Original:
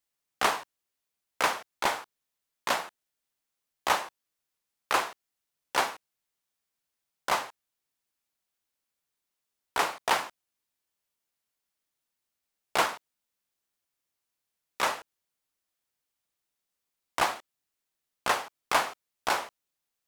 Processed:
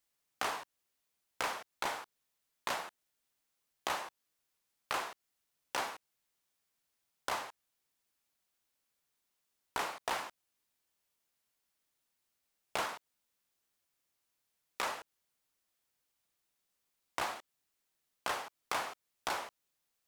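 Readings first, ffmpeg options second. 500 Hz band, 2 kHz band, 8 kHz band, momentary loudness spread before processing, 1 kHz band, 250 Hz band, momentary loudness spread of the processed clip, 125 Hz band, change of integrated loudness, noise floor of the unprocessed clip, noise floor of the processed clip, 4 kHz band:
-9.0 dB, -9.0 dB, -8.5 dB, 12 LU, -9.5 dB, -8.5 dB, 12 LU, -8.0 dB, -9.5 dB, -85 dBFS, -84 dBFS, -8.5 dB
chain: -af "asoftclip=type=tanh:threshold=-20dB,acompressor=threshold=-38dB:ratio=3,volume=2dB"

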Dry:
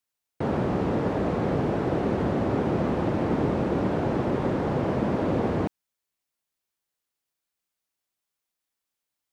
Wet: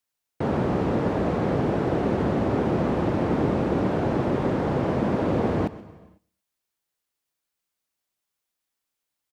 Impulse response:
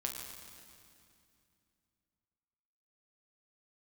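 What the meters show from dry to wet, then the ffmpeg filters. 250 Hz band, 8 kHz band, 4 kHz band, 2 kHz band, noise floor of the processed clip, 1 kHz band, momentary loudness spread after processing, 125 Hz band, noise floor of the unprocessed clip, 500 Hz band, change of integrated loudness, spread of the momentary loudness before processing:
+1.5 dB, n/a, +1.5 dB, +1.5 dB, -84 dBFS, +1.5 dB, 2 LU, +1.5 dB, -85 dBFS, +1.5 dB, +1.5 dB, 2 LU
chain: -filter_complex "[0:a]aecho=1:1:114|228:0.0794|0.0262,asplit=2[a][b];[1:a]atrim=start_sample=2205,afade=t=out:st=0.43:d=0.01,atrim=end_sample=19404,adelay=128[c];[b][c]afir=irnorm=-1:irlink=0,volume=-17dB[d];[a][d]amix=inputs=2:normalize=0,volume=1.5dB"

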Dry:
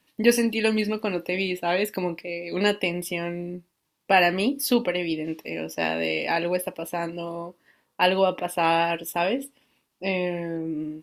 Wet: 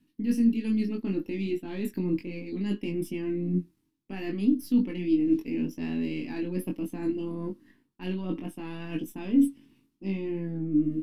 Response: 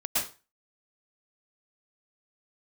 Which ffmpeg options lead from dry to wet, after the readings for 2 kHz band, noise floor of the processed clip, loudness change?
-18.0 dB, -73 dBFS, -4.5 dB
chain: -af "aeval=exprs='if(lt(val(0),0),0.708*val(0),val(0))':c=same,areverse,acompressor=threshold=-34dB:ratio=10,areverse,flanger=delay=19.5:depth=2.4:speed=0.67,lowshelf=f=410:t=q:w=3:g=12.5"

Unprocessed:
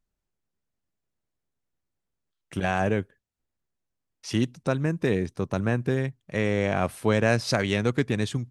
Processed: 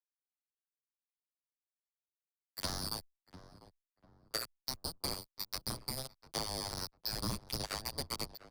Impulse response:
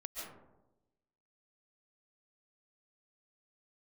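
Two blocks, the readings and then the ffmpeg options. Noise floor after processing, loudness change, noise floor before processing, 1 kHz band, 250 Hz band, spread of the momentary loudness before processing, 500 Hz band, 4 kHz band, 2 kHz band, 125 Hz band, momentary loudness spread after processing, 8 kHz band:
under -85 dBFS, -13.0 dB, -83 dBFS, -13.5 dB, -21.0 dB, 7 LU, -21.5 dB, -1.0 dB, -19.0 dB, -19.5 dB, 5 LU, -1.0 dB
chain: -filter_complex "[0:a]afftfilt=real='real(if(lt(b,272),68*(eq(floor(b/68),0)*1+eq(floor(b/68),1)*2+eq(floor(b/68),2)*3+eq(floor(b/68),3)*0)+mod(b,68),b),0)':imag='imag(if(lt(b,272),68*(eq(floor(b/68),0)*1+eq(floor(b/68),1)*2+eq(floor(b/68),2)*3+eq(floor(b/68),3)*0)+mod(b,68),b),0)':win_size=2048:overlap=0.75,highpass=f=50:w=0.5412,highpass=f=50:w=1.3066,aemphasis=mode=reproduction:type=75fm,asplit=2[a][b];[b]alimiter=limit=-19dB:level=0:latency=1:release=266,volume=0dB[c];[a][c]amix=inputs=2:normalize=0,acrusher=bits=2:mix=0:aa=0.5,acrossover=split=140[d][e];[e]acompressor=threshold=-32dB:ratio=6[f];[d][f]amix=inputs=2:normalize=0,asplit=2[g][h];[h]adelay=697,lowpass=f=1.2k:p=1,volume=-13.5dB,asplit=2[i][j];[j]adelay=697,lowpass=f=1.2k:p=1,volume=0.37,asplit=2[k][l];[l]adelay=697,lowpass=f=1.2k:p=1,volume=0.37,asplit=2[m][n];[n]adelay=697,lowpass=f=1.2k:p=1,volume=0.37[o];[i][k][m][o]amix=inputs=4:normalize=0[p];[g][p]amix=inputs=2:normalize=0,asplit=2[q][r];[r]adelay=8.1,afreqshift=0.58[s];[q][s]amix=inputs=2:normalize=1,volume=1dB"

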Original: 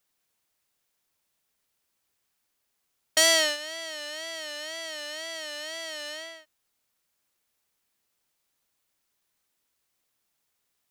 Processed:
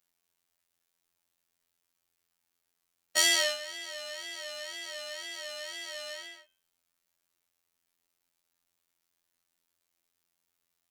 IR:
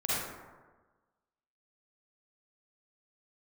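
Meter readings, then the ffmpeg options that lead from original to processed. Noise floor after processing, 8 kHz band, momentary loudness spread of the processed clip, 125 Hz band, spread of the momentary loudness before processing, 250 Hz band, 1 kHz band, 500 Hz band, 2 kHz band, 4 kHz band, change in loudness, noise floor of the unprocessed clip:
-83 dBFS, -3.5 dB, 15 LU, n/a, 16 LU, -7.0 dB, -5.0 dB, -6.5 dB, -3.5 dB, -3.5 dB, -3.5 dB, -78 dBFS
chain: -af "afftfilt=real='hypot(re,im)*cos(PI*b)':imag='0':win_size=2048:overlap=0.75,bandreject=f=103.2:t=h:w=4,bandreject=f=206.4:t=h:w=4,bandreject=f=309.6:t=h:w=4,bandreject=f=412.8:t=h:w=4,bandreject=f=516:t=h:w=4,bandreject=f=619.2:t=h:w=4,bandreject=f=722.4:t=h:w=4,bandreject=f=825.6:t=h:w=4,bandreject=f=928.8:t=h:w=4,bandreject=f=1.032k:t=h:w=4,bandreject=f=1.1352k:t=h:w=4,bandreject=f=1.2384k:t=h:w=4,bandreject=f=1.3416k:t=h:w=4,bandreject=f=1.4448k:t=h:w=4,bandreject=f=1.548k:t=h:w=4,bandreject=f=1.6512k:t=h:w=4,bandreject=f=1.7544k:t=h:w=4,bandreject=f=1.8576k:t=h:w=4,bandreject=f=1.9608k:t=h:w=4,bandreject=f=2.064k:t=h:w=4,bandreject=f=2.1672k:t=h:w=4,bandreject=f=2.2704k:t=h:w=4,bandreject=f=2.3736k:t=h:w=4,bandreject=f=2.4768k:t=h:w=4,bandreject=f=2.58k:t=h:w=4,bandreject=f=2.6832k:t=h:w=4,bandreject=f=2.7864k:t=h:w=4,bandreject=f=2.8896k:t=h:w=4,bandreject=f=2.9928k:t=h:w=4,bandreject=f=3.096k:t=h:w=4,bandreject=f=3.1992k:t=h:w=4,bandreject=f=3.3024k:t=h:w=4,bandreject=f=3.4056k:t=h:w=4"

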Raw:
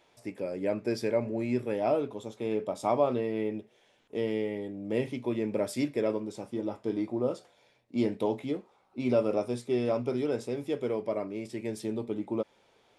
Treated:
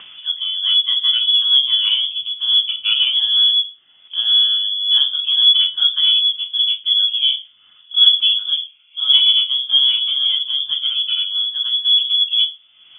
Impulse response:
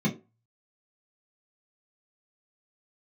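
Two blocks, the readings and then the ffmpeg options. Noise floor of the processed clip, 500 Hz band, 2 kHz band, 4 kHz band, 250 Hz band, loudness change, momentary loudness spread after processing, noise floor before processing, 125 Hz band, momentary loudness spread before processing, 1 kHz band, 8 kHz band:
-51 dBFS, under -35 dB, +10.0 dB, +41.0 dB, under -35 dB, +18.0 dB, 9 LU, -66 dBFS, under -25 dB, 9 LU, n/a, under -30 dB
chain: -filter_complex "[0:a]asplit=2[a][b];[b]adynamicsmooth=sensitivity=2.5:basefreq=1.5k,volume=3dB[c];[a][c]amix=inputs=2:normalize=0,lowshelf=f=170:g=-8.5,asplit=2[d][e];[1:a]atrim=start_sample=2205[f];[e][f]afir=irnorm=-1:irlink=0,volume=-9.5dB[g];[d][g]amix=inputs=2:normalize=0,acompressor=mode=upward:threshold=-23dB:ratio=2.5,lowpass=f=3.1k:t=q:w=0.5098,lowpass=f=3.1k:t=q:w=0.6013,lowpass=f=3.1k:t=q:w=0.9,lowpass=f=3.1k:t=q:w=2.563,afreqshift=-3600,volume=-1dB"

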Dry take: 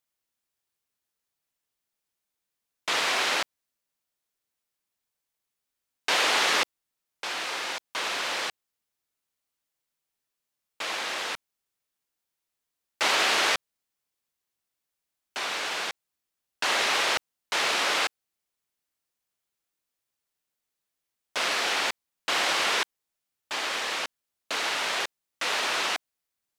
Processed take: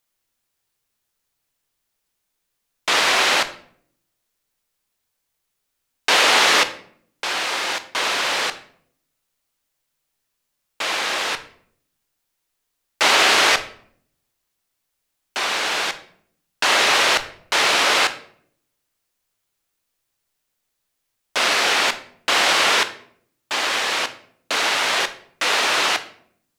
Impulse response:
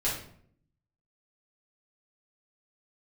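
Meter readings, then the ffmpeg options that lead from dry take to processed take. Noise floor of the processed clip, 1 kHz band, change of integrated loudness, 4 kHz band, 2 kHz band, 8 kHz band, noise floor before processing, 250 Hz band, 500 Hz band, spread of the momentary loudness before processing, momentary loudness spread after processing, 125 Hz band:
-77 dBFS, +8.5 dB, +8.5 dB, +8.5 dB, +8.5 dB, +8.5 dB, -85 dBFS, +8.5 dB, +8.5 dB, 12 LU, 12 LU, n/a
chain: -filter_complex "[0:a]asplit=2[a][b];[1:a]atrim=start_sample=2205,lowshelf=f=110:g=10.5,adelay=16[c];[b][c]afir=irnorm=-1:irlink=0,volume=-18dB[d];[a][d]amix=inputs=2:normalize=0,volume=8dB"

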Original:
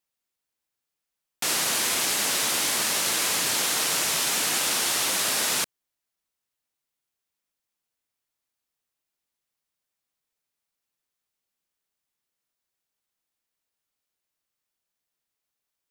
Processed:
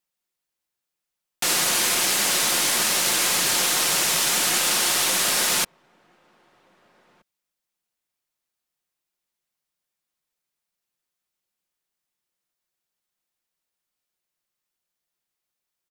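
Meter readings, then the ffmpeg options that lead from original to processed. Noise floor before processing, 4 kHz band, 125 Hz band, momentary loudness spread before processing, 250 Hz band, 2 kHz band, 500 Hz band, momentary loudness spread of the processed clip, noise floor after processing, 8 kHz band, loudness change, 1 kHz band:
-85 dBFS, +3.5 dB, +4.0 dB, 2 LU, +3.5 dB, +3.5 dB, +3.5 dB, 2 LU, -85 dBFS, +3.5 dB, +3.5 dB, +3.5 dB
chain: -filter_complex "[0:a]aecho=1:1:5.6:0.31,asplit=2[a][b];[b]acrusher=bits=5:dc=4:mix=0:aa=0.000001,volume=-7.5dB[c];[a][c]amix=inputs=2:normalize=0,asplit=2[d][e];[e]adelay=1574,volume=-28dB,highshelf=f=4k:g=-35.4[f];[d][f]amix=inputs=2:normalize=0"

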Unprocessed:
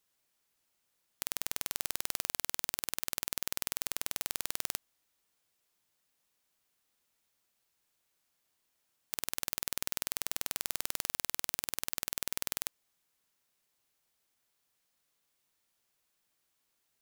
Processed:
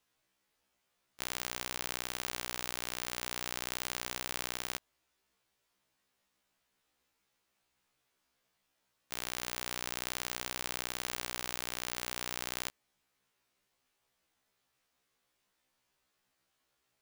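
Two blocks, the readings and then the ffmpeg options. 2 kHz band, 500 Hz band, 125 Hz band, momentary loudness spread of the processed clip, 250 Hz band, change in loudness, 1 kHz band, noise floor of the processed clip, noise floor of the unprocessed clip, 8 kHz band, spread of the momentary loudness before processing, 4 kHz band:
+3.0 dB, +4.0 dB, +4.0 dB, 2 LU, +4.0 dB, -2.5 dB, +4.0 dB, -81 dBFS, -79 dBFS, -3.0 dB, 2 LU, +1.0 dB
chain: -af "highshelf=f=5.9k:g=-11,afftfilt=real='re*1.73*eq(mod(b,3),0)':imag='im*1.73*eq(mod(b,3),0)':win_size=2048:overlap=0.75,volume=6.5dB"

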